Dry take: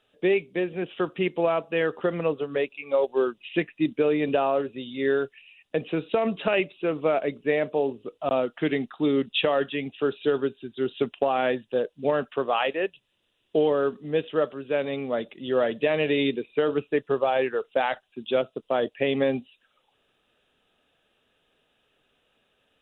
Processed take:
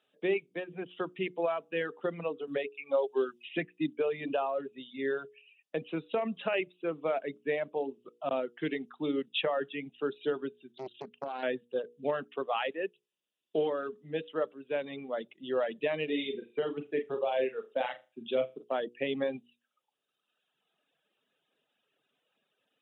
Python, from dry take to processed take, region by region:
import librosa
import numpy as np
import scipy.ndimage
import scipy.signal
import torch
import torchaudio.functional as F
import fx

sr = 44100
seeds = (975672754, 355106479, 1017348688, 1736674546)

y = fx.chain(x, sr, fx.comb(ms=7.4, depth=0.34),
    fx.band_squash(depth_pct=40), at=(2.47, 3.94))
y = fx.chain(y, sr, fx.peak_eq(hz=110.0, db=-3.5, octaves=0.84),
    fx.level_steps(step_db=10),
    fx.doppler_dist(depth_ms=0.56), at=(10.72, 11.43))
y = fx.chain(y, sr, fx.dynamic_eq(hz=1300.0, q=1.2, threshold_db=-40.0, ratio=4.0, max_db=-6),
    fx.doubler(ms=48.0, db=-8.5),
    fx.room_flutter(wall_m=6.6, rt60_s=0.3), at=(16.04, 18.64))
y = scipy.signal.sosfilt(scipy.signal.butter(4, 140.0, 'highpass', fs=sr, output='sos'), y)
y = fx.hum_notches(y, sr, base_hz=60, count=8)
y = fx.dereverb_blind(y, sr, rt60_s=1.5)
y = F.gain(torch.from_numpy(y), -6.5).numpy()